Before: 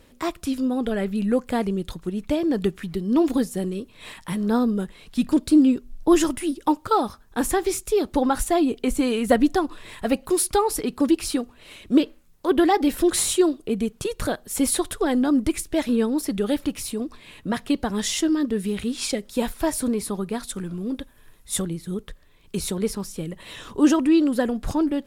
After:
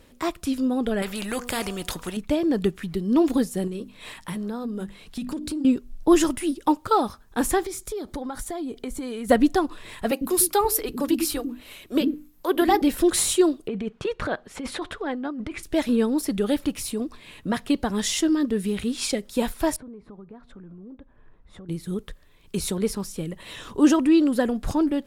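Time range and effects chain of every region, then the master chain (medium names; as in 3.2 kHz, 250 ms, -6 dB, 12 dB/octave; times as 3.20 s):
1.02–2.17 s: band-stop 4.1 kHz, Q 18 + de-hum 242.8 Hz, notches 5 + spectrum-flattening compressor 2:1
3.67–5.65 s: hum notches 50/100/150/200/250/300/350 Hz + compression, threshold -27 dBFS
7.63–9.29 s: band-stop 2.7 kHz, Q 5.7 + compression 4:1, threshold -30 dBFS
10.11–12.82 s: peaking EQ 13 kHz +14.5 dB 0.27 oct + hum notches 50/100/150/200/250/300 Hz + bands offset in time highs, lows 100 ms, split 290 Hz
13.68–15.63 s: low-pass 2.1 kHz + compressor with a negative ratio -25 dBFS + tilt EQ +2 dB/octave
19.76–21.69 s: low-pass 1.3 kHz + compression 3:1, threshold -45 dBFS
whole clip: none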